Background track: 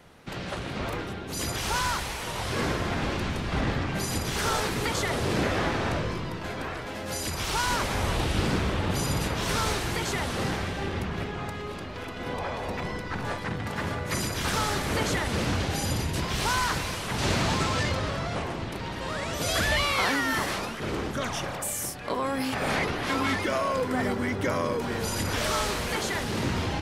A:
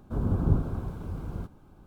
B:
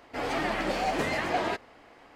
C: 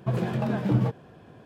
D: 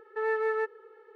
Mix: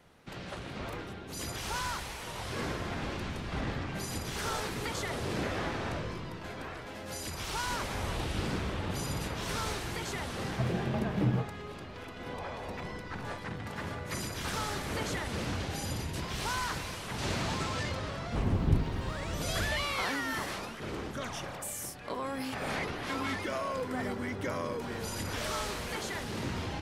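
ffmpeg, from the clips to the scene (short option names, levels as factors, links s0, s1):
-filter_complex "[0:a]volume=0.422[s0];[3:a]atrim=end=1.45,asetpts=PTS-STARTPTS,volume=0.531,afade=t=in:d=0.004:c=hsin,afade=t=out:st=1.446:d=0.004:c=hsin,adelay=10520[s1];[1:a]atrim=end=1.86,asetpts=PTS-STARTPTS,volume=0.708,afade=t=in:d=0.004:c=hsin,afade=t=out:st=1.856:d=0.004:c=hsin,adelay=18210[s2];[s0][s1][s2]amix=inputs=3:normalize=0"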